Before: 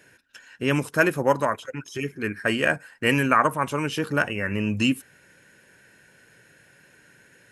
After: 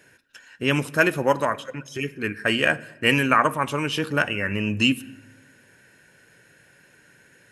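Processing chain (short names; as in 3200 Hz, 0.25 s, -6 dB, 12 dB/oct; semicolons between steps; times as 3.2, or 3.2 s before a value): dynamic EQ 3200 Hz, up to +6 dB, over -40 dBFS, Q 1.3; on a send: reverb RT60 1.0 s, pre-delay 7 ms, DRR 18 dB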